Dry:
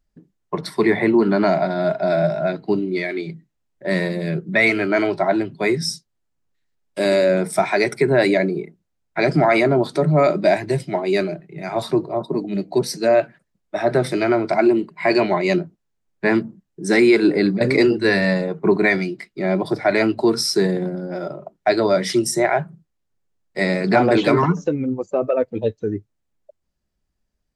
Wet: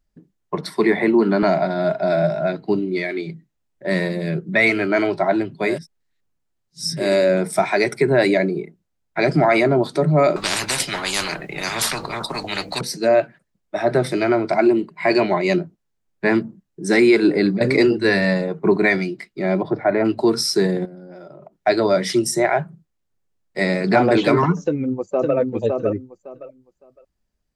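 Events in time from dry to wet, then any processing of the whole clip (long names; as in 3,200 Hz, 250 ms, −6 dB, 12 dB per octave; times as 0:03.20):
0:00.61–0:01.43: high-pass filter 150 Hz 24 dB per octave
0:05.75–0:07.00: reverse, crossfade 0.24 s
0:10.36–0:12.81: every bin compressed towards the loudest bin 10 to 1
0:19.62–0:20.04: low-pass filter 2,200 Hz → 1,200 Hz
0:20.85–0:21.60: downward compressor 4 to 1, threshold −38 dBFS
0:24.63–0:25.36: delay throw 560 ms, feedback 20%, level −3 dB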